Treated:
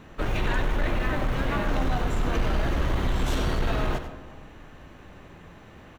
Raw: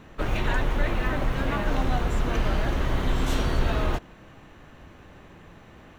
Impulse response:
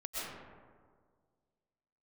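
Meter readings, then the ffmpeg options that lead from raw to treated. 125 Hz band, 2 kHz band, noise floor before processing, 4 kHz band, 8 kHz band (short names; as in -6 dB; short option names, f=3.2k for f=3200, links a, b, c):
-0.5 dB, -0.5 dB, -50 dBFS, -0.5 dB, -0.5 dB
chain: -filter_complex "[0:a]aeval=exprs='0.282*sin(PI/2*1.58*val(0)/0.282)':c=same,aecho=1:1:94:0.299,asplit=2[a][b];[1:a]atrim=start_sample=2205[c];[b][c]afir=irnorm=-1:irlink=0,volume=-16dB[d];[a][d]amix=inputs=2:normalize=0,volume=-8dB"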